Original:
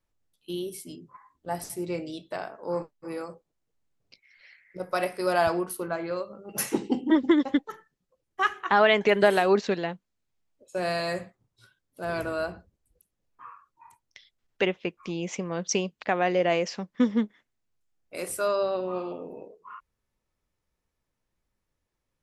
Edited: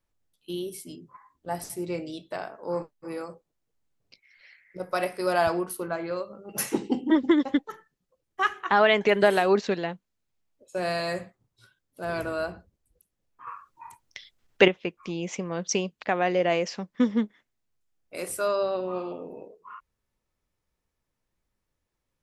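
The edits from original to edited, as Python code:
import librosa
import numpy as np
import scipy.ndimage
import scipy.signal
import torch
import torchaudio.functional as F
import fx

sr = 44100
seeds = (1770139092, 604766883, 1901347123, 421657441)

y = fx.edit(x, sr, fx.clip_gain(start_s=13.47, length_s=1.21, db=8.0), tone=tone)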